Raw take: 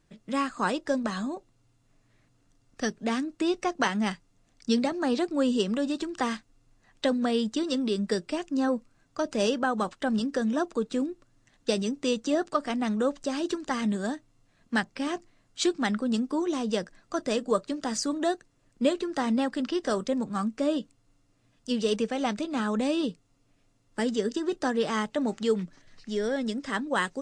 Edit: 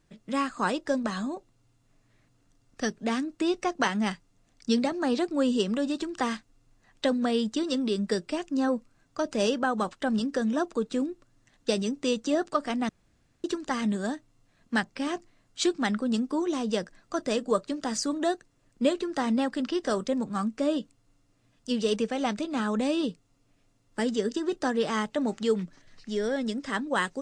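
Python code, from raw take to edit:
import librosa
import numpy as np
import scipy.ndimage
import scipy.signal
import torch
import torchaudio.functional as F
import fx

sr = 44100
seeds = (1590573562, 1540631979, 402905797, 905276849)

y = fx.edit(x, sr, fx.room_tone_fill(start_s=12.89, length_s=0.55), tone=tone)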